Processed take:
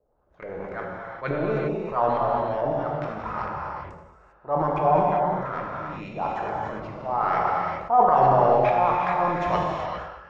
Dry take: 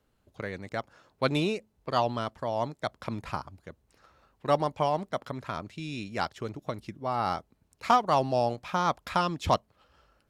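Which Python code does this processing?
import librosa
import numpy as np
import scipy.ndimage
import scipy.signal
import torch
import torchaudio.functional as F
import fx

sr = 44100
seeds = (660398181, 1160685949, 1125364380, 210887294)

y = fx.peak_eq(x, sr, hz=3300.0, db=-3.5, octaves=2.1)
y = fx.transient(y, sr, attack_db=-8, sustain_db=11)
y = fx.filter_lfo_lowpass(y, sr, shape='saw_up', hz=2.3, low_hz=540.0, high_hz=2200.0, q=2.4)
y = fx.graphic_eq_15(y, sr, hz=(100, 250, 6300), db=(-10, -10, 9))
y = y + 10.0 ** (-21.5 / 20.0) * np.pad(y, (int(219 * sr / 1000.0), 0))[:len(y)]
y = fx.rev_gated(y, sr, seeds[0], gate_ms=430, shape='flat', drr_db=-3.5)
y = fx.sustainer(y, sr, db_per_s=51.0)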